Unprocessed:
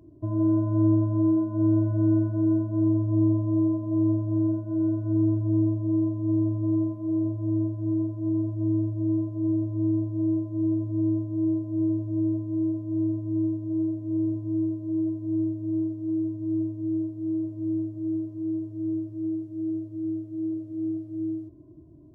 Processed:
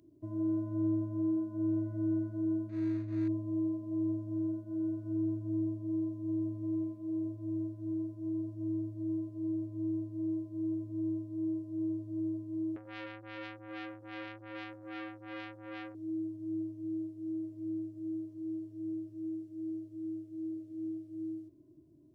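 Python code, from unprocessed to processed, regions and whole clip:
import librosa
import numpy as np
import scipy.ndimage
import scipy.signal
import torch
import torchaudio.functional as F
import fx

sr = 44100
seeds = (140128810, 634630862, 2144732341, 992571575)

y = fx.chain(x, sr, fx.median_filter(points=41),
    fx.air_absorb(metres=61.0), at=(2.69, 3.28))
y = fx.chain(y, sr, fx.echo_single(ms=92, db=-18.0),
    fx.transformer_sat(knee_hz=1300.0), at=(12.76, 15.95))
y = fx.highpass(y, sr, hz=550.0, slope=6)
y = fx.peak_eq(y, sr, hz=880.0, db=-14.5, octaves=1.6)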